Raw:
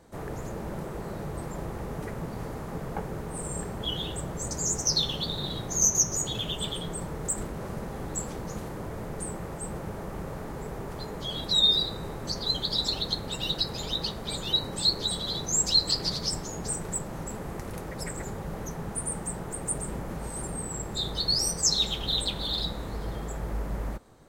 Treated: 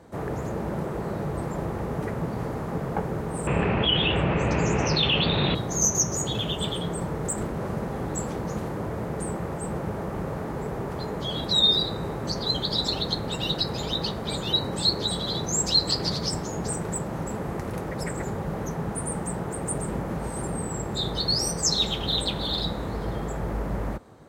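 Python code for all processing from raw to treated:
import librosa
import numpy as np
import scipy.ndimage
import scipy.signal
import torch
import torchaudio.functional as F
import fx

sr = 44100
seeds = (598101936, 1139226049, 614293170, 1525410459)

y = fx.chain(x, sr, fx.lowpass_res(hz=2600.0, q=8.2),
    fx.env_flatten(amount_pct=50), at=(3.47, 5.55))
y = scipy.signal.sosfilt(scipy.signal.butter(2, 65.0, 'highpass', fs=sr, output='sos'), y)
y = fx.high_shelf(y, sr, hz=3100.0, db=-8.5)
y = y * 10.0 ** (6.5 / 20.0)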